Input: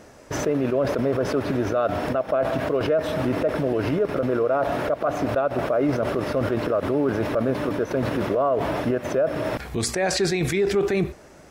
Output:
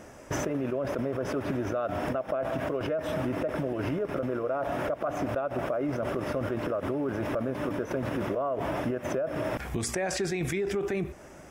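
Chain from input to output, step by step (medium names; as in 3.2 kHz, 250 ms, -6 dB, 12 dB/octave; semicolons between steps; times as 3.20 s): peaking EQ 4.2 kHz -10.5 dB 0.31 oct; band-stop 450 Hz, Q 12; compression, threshold -27 dBFS, peak gain reduction 9.5 dB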